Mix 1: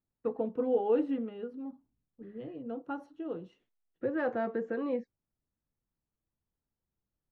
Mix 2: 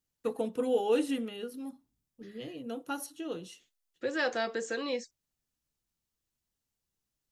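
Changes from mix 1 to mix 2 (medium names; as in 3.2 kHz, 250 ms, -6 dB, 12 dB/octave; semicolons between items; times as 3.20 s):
second voice: add tone controls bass -10 dB, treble +9 dB; master: remove low-pass 1.2 kHz 12 dB/octave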